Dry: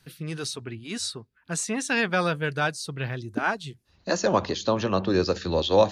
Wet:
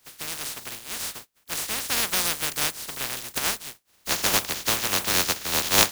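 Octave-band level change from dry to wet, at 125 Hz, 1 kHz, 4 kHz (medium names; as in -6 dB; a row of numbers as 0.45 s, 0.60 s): -9.0 dB, -2.5 dB, +7.0 dB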